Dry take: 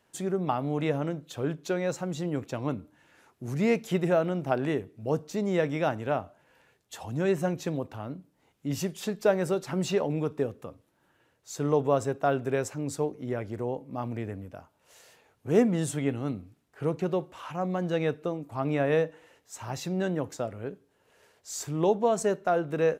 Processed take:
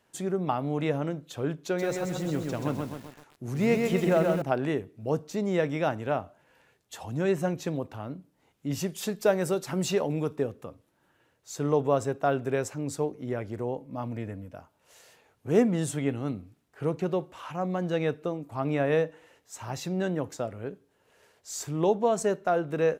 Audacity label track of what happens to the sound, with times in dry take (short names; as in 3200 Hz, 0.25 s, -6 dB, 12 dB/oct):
1.580000	4.420000	lo-fi delay 0.13 s, feedback 55%, word length 8-bit, level -3.5 dB
8.920000	10.360000	high shelf 6300 Hz +8 dB
13.860000	14.560000	notch comb 390 Hz